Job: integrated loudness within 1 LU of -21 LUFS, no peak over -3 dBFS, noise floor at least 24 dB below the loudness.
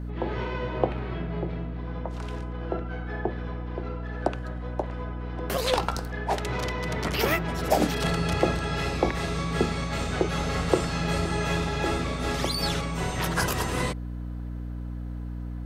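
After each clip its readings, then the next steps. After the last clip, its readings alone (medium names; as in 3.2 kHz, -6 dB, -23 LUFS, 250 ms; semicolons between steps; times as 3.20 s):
hum 60 Hz; highest harmonic 300 Hz; hum level -31 dBFS; loudness -29.0 LUFS; peak level -7.0 dBFS; loudness target -21.0 LUFS
-> hum notches 60/120/180/240/300 Hz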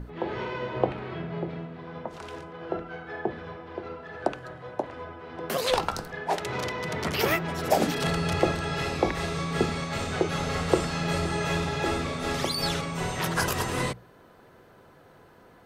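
hum not found; loudness -29.0 LUFS; peak level -6.5 dBFS; loudness target -21.0 LUFS
-> trim +8 dB; peak limiter -3 dBFS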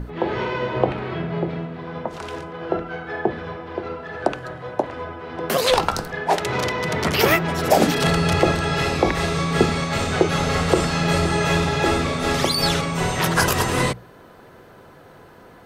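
loudness -21.5 LUFS; peak level -3.0 dBFS; noise floor -46 dBFS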